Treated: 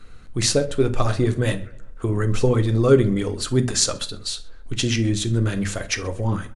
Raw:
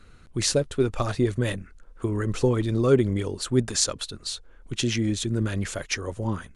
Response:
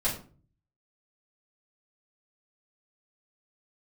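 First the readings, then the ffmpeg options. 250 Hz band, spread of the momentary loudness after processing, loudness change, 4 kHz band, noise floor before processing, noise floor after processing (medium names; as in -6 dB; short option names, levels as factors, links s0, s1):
+3.0 dB, 12 LU, +4.0 dB, +4.0 dB, -50 dBFS, -40 dBFS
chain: -filter_complex "[0:a]asplit=2[s0][s1];[s1]adelay=128,lowpass=f=2400:p=1,volume=0.1,asplit=2[s2][s3];[s3]adelay=128,lowpass=f=2400:p=1,volume=0.46,asplit=2[s4][s5];[s5]adelay=128,lowpass=f=2400:p=1,volume=0.46[s6];[s0][s2][s4][s6]amix=inputs=4:normalize=0,asplit=2[s7][s8];[1:a]atrim=start_sample=2205,afade=t=out:st=0.14:d=0.01,atrim=end_sample=6615[s9];[s8][s9]afir=irnorm=-1:irlink=0,volume=0.211[s10];[s7][s10]amix=inputs=2:normalize=0,volume=1.26"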